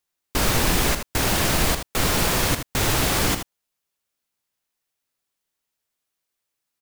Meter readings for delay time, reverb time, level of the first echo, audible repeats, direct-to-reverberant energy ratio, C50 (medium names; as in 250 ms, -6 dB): 79 ms, no reverb, -8.5 dB, 1, no reverb, no reverb